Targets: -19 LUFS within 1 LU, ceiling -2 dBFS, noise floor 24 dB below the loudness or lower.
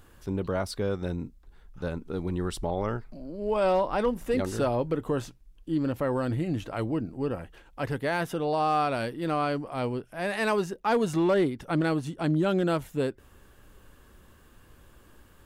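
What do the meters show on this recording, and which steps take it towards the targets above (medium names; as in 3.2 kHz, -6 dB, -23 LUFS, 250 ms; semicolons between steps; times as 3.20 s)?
clipped samples 0.2%; clipping level -17.5 dBFS; loudness -29.0 LUFS; peak level -17.5 dBFS; loudness target -19.0 LUFS
-> clip repair -17.5 dBFS; trim +10 dB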